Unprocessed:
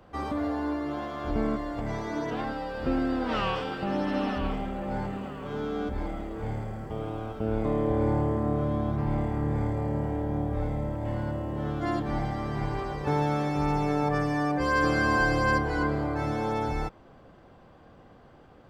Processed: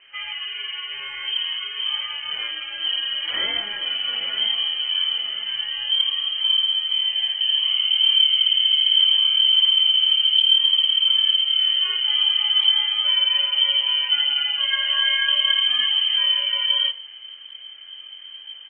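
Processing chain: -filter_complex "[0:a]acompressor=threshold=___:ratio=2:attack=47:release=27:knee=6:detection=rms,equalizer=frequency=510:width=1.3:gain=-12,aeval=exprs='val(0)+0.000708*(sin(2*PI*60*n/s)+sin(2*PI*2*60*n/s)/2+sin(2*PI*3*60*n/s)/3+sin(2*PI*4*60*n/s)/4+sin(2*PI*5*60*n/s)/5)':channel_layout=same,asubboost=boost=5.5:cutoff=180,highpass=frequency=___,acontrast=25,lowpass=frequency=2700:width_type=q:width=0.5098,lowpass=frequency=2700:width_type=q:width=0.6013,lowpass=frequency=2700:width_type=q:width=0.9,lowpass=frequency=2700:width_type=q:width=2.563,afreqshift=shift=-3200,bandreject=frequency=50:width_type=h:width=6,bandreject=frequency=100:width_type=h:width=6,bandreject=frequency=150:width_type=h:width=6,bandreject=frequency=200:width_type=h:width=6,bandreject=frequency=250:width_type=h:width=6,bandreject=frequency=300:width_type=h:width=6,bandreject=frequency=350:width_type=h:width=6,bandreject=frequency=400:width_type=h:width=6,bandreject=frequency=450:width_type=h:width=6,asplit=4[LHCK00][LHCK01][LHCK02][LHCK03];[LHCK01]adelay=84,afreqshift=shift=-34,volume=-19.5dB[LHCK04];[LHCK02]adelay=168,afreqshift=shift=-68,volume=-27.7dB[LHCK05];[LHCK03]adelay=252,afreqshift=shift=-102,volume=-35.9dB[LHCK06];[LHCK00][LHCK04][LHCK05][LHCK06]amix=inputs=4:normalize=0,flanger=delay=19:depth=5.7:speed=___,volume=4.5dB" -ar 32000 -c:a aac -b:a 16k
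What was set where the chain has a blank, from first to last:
-38dB, 60, 0.43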